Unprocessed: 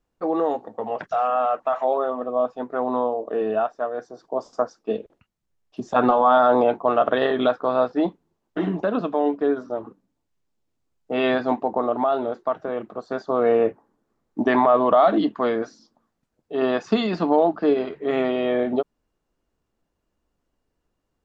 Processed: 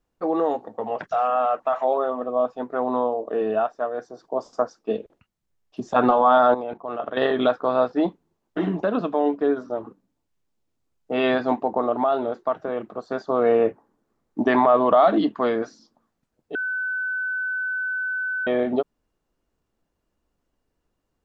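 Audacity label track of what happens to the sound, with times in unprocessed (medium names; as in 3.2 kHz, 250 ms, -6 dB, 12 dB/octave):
6.540000	7.170000	level held to a coarse grid steps of 15 dB
16.550000	18.470000	bleep 1.51 kHz -23.5 dBFS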